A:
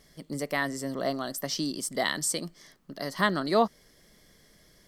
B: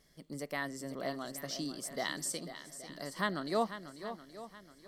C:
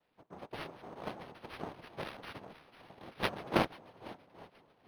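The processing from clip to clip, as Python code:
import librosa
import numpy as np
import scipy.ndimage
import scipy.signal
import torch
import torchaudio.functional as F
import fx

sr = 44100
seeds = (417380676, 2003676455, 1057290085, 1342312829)

y1 = fx.echo_swing(x, sr, ms=824, ratio=1.5, feedback_pct=32, wet_db=-11.5)
y1 = F.gain(torch.from_numpy(y1), -8.5).numpy()
y2 = fx.noise_vocoder(y1, sr, seeds[0], bands=2)
y2 = fx.cheby_harmonics(y2, sr, harmonics=(3,), levels_db=(-11,), full_scale_db=-18.0)
y2 = np.interp(np.arange(len(y2)), np.arange(len(y2))[::6], y2[::6])
y2 = F.gain(torch.from_numpy(y2), 8.5).numpy()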